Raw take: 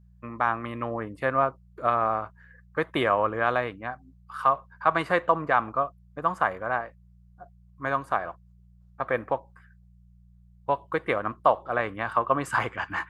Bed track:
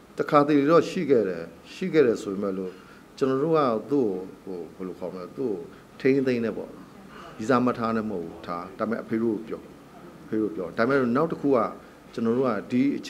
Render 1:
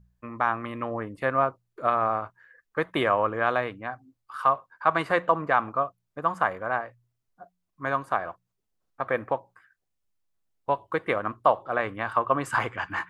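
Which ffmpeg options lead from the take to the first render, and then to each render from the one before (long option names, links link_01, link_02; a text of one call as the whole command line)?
ffmpeg -i in.wav -af "bandreject=frequency=60:width_type=h:width=4,bandreject=frequency=120:width_type=h:width=4,bandreject=frequency=180:width_type=h:width=4" out.wav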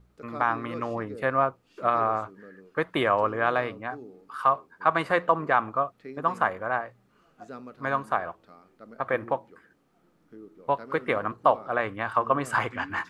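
ffmpeg -i in.wav -i bed.wav -filter_complex "[1:a]volume=-20.5dB[link_01];[0:a][link_01]amix=inputs=2:normalize=0" out.wav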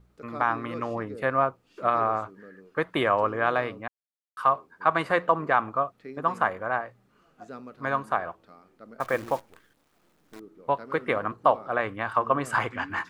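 ffmpeg -i in.wav -filter_complex "[0:a]asettb=1/sr,asplit=3[link_01][link_02][link_03];[link_01]atrim=end=9.004[link_04];[link_02]atrim=start=9:end=10.4,asetpts=PTS-STARTPTS,afade=type=in:duration=0.004:curve=qsin,afade=type=out:start_time=1.396:duration=0.004:curve=qsin,acrusher=bits=8:dc=4:mix=0:aa=0.000001[link_05];[link_03]atrim=start=10.396[link_06];[link_04][link_05]acrossfade=duration=0.004:curve1=hsin:curve2=qsin[link_07];[link_07][link_06]acrossfade=duration=0.004:curve1=qsin:curve2=hsin,asplit=3[link_08][link_09][link_10];[link_08]atrim=end=3.88,asetpts=PTS-STARTPTS,afade=type=out:start_time=3.876:duration=0.004:curve=hsin[link_11];[link_09]atrim=start=3.88:end=4.37,asetpts=PTS-STARTPTS,volume=0[link_12];[link_10]atrim=start=4.37,asetpts=PTS-STARTPTS,afade=type=in:duration=0.004:curve=hsin[link_13];[link_11][link_12][link_13]concat=n=3:v=0:a=1" out.wav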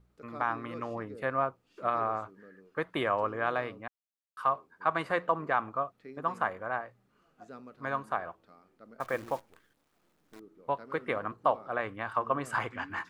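ffmpeg -i in.wav -af "volume=-6dB" out.wav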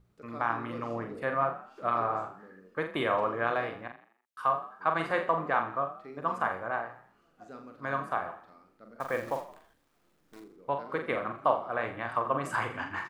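ffmpeg -i in.wav -filter_complex "[0:a]asplit=2[link_01][link_02];[link_02]adelay=43,volume=-6dB[link_03];[link_01][link_03]amix=inputs=2:normalize=0,asplit=5[link_04][link_05][link_06][link_07][link_08];[link_05]adelay=83,afreqshift=34,volume=-13dB[link_09];[link_06]adelay=166,afreqshift=68,volume=-21dB[link_10];[link_07]adelay=249,afreqshift=102,volume=-28.9dB[link_11];[link_08]adelay=332,afreqshift=136,volume=-36.9dB[link_12];[link_04][link_09][link_10][link_11][link_12]amix=inputs=5:normalize=0" out.wav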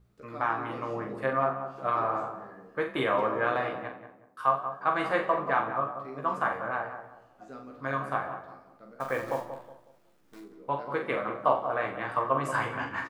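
ffmpeg -i in.wav -filter_complex "[0:a]asplit=2[link_01][link_02];[link_02]adelay=15,volume=-4.5dB[link_03];[link_01][link_03]amix=inputs=2:normalize=0,asplit=2[link_04][link_05];[link_05]adelay=184,lowpass=frequency=1100:poles=1,volume=-8dB,asplit=2[link_06][link_07];[link_07]adelay=184,lowpass=frequency=1100:poles=1,volume=0.37,asplit=2[link_08][link_09];[link_09]adelay=184,lowpass=frequency=1100:poles=1,volume=0.37,asplit=2[link_10][link_11];[link_11]adelay=184,lowpass=frequency=1100:poles=1,volume=0.37[link_12];[link_06][link_08][link_10][link_12]amix=inputs=4:normalize=0[link_13];[link_04][link_13]amix=inputs=2:normalize=0" out.wav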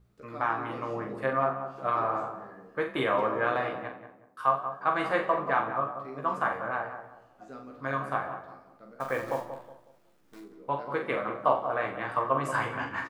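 ffmpeg -i in.wav -af anull out.wav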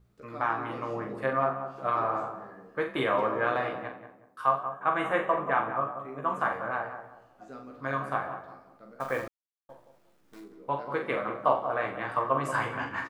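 ffmpeg -i in.wav -filter_complex "[0:a]asettb=1/sr,asplit=3[link_01][link_02][link_03];[link_01]atrim=end=4.634[link_04];[link_02]atrim=start=4.63:end=6.39,asetpts=PTS-STARTPTS,afade=type=in:duration=0.004:curve=qsin,afade=type=out:start_time=1.756:duration=0.004:curve=qsin,asuperstop=centerf=4700:order=4:qfactor=1.8[link_05];[link_03]atrim=start=6.386[link_06];[link_04][link_05]acrossfade=duration=0.004:curve1=hsin:curve2=qsin[link_07];[link_07][link_06]acrossfade=duration=0.004:curve1=qsin:curve2=hsin,asplit=3[link_08][link_09][link_10];[link_08]atrim=end=9.28,asetpts=PTS-STARTPTS,afade=type=out:start_time=9.276:duration=0.004:curve=hsin[link_11];[link_09]atrim=start=9.28:end=9.69,asetpts=PTS-STARTPTS,volume=0[link_12];[link_10]atrim=start=9.69,asetpts=PTS-STARTPTS,afade=type=in:duration=0.004:curve=hsin[link_13];[link_11][link_12][link_13]concat=n=3:v=0:a=1" out.wav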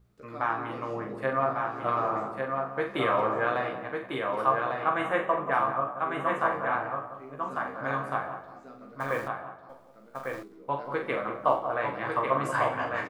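ffmpeg -i in.wav -af "aecho=1:1:1149:0.631" out.wav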